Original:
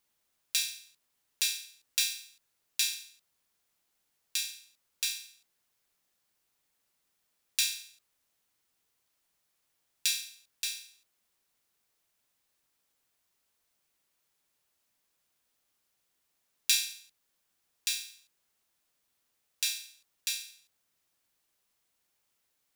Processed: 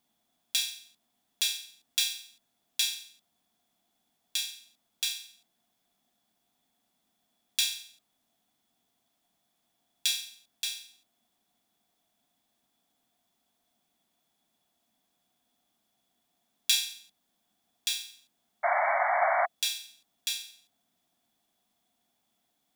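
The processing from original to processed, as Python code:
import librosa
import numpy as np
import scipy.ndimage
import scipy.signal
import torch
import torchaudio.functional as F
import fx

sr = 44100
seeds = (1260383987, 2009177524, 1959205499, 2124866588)

y = fx.spec_paint(x, sr, seeds[0], shape='noise', start_s=18.63, length_s=0.83, low_hz=560.0, high_hz=2300.0, level_db=-30.0)
y = fx.small_body(y, sr, hz=(230.0, 700.0, 3400.0), ring_ms=30, db=16)
y = y * librosa.db_to_amplitude(-1.0)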